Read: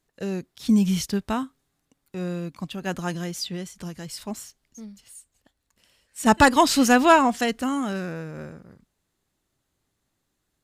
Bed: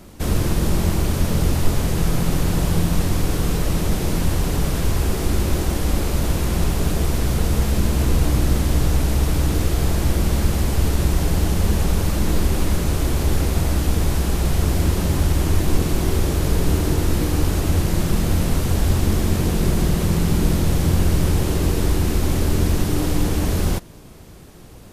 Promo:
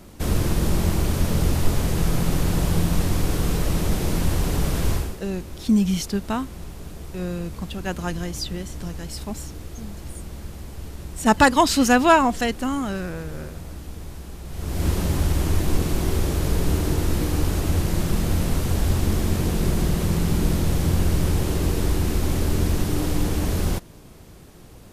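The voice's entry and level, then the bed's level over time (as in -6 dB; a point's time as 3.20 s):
5.00 s, +0.5 dB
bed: 4.94 s -2 dB
5.21 s -17 dB
14.46 s -17 dB
14.87 s -3 dB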